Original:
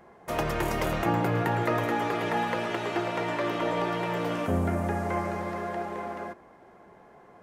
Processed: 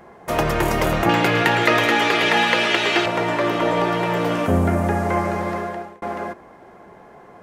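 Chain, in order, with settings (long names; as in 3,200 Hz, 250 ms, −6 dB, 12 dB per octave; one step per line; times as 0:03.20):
0:01.09–0:03.06: meter weighting curve D
0:05.54–0:06.02: fade out
level +8.5 dB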